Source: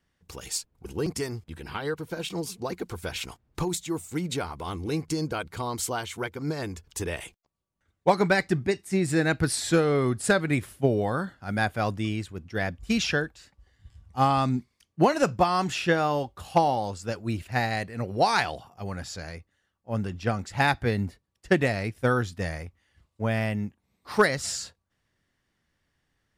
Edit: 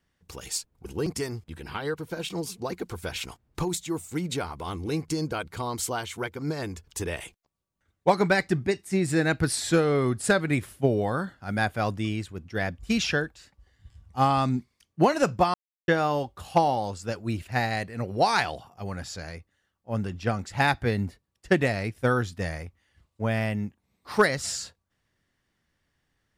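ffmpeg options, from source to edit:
-filter_complex "[0:a]asplit=3[s0][s1][s2];[s0]atrim=end=15.54,asetpts=PTS-STARTPTS,afade=t=out:st=15.536:d=0.004:c=hsin[s3];[s1]atrim=start=15.54:end=15.88,asetpts=PTS-STARTPTS,volume=0[s4];[s2]atrim=start=15.88,asetpts=PTS-STARTPTS,afade=t=in:d=0.004:c=hsin[s5];[s3][s4][s5]concat=n=3:v=0:a=1"

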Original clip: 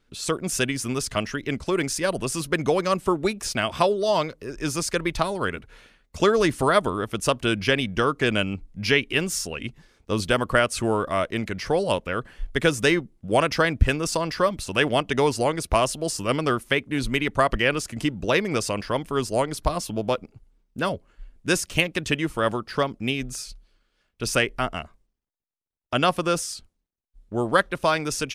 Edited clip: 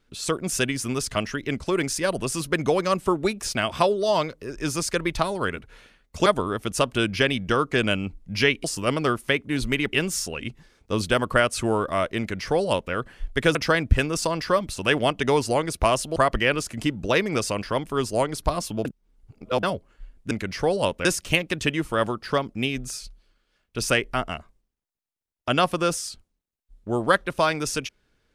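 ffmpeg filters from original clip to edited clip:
-filter_complex "[0:a]asplit=10[s0][s1][s2][s3][s4][s5][s6][s7][s8][s9];[s0]atrim=end=6.262[s10];[s1]atrim=start=6.738:end=9.122[s11];[s2]atrim=start=16.058:end=17.352[s12];[s3]atrim=start=9.118:end=12.742[s13];[s4]atrim=start=13.448:end=16.062[s14];[s5]atrim=start=17.348:end=20.042[s15];[s6]atrim=start=20.038:end=20.822,asetpts=PTS-STARTPTS,areverse[s16];[s7]atrim=start=20.818:end=21.502[s17];[s8]atrim=start=11.378:end=12.122[s18];[s9]atrim=start=21.498[s19];[s10][s11]acrossfade=d=0.004:c1=hsin:c2=hsin[s20];[s20][s12]acrossfade=d=0.004:c1=hsin:c2=hsin[s21];[s21][s13]acrossfade=d=0.004:c1=hsin:c2=hsin[s22];[s22][s14]acrossfade=d=0.004:c1=hsin:c2=hsin[s23];[s23][s15]acrossfade=d=0.004:c1=hsin:c2=hsin[s24];[s24][s16]acrossfade=d=0.004:c1=hsin:c2=hsin[s25];[s25][s17]acrossfade=d=0.004:c1=hsin:c2=hsin[s26];[s26][s18]acrossfade=d=0.004:c1=hsin:c2=hsin[s27];[s27][s19]acrossfade=d=0.004:c1=hsin:c2=hsin"

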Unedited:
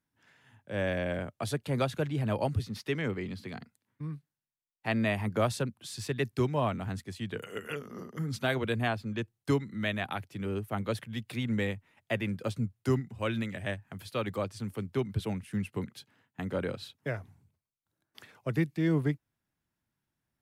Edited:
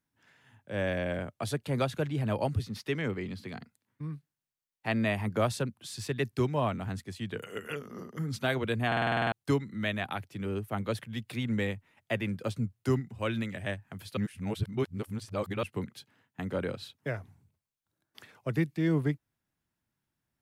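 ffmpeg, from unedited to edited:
-filter_complex "[0:a]asplit=12[s0][s1][s2][s3][s4][s5][s6][s7][s8][s9][s10][s11];[s0]atrim=end=8.922[s12];[s1]atrim=start=8.868:end=8.922[s13];[s2]atrim=start=8.868:end=8.922[s14];[s3]atrim=start=8.868:end=8.922[s15];[s4]atrim=start=8.868:end=8.922[s16];[s5]atrim=start=8.868:end=8.922[s17];[s6]atrim=start=8.868:end=8.922[s18];[s7]atrim=start=8.868:end=8.922[s19];[s8]atrim=start=8.868:end=8.922[s20];[s9]atrim=start=9.318:end=14.172[s21];[s10]atrim=start=14.168:end=15.632,asetpts=PTS-STARTPTS,areverse[s22];[s11]atrim=start=15.628[s23];[s12][s13]acrossfade=d=0.004:c1=hsin:c2=hsin[s24];[s24][s14]acrossfade=d=0.004:c1=hsin:c2=hsin[s25];[s25][s15]acrossfade=d=0.004:c1=hsin:c2=hsin[s26];[s26][s16]acrossfade=d=0.004:c1=hsin:c2=hsin[s27];[s27][s17]acrossfade=d=0.004:c1=hsin:c2=hsin[s28];[s28][s18]acrossfade=d=0.004:c1=hsin:c2=hsin[s29];[s29][s19]acrossfade=d=0.004:c1=hsin:c2=hsin[s30];[s30][s20]acrossfade=d=0.004:c1=hsin:c2=hsin[s31];[s31][s21]acrossfade=d=0.004:c1=hsin:c2=hsin[s32];[s32][s22]acrossfade=d=0.004:c1=hsin:c2=hsin[s33];[s33][s23]acrossfade=d=0.004:c1=hsin:c2=hsin"

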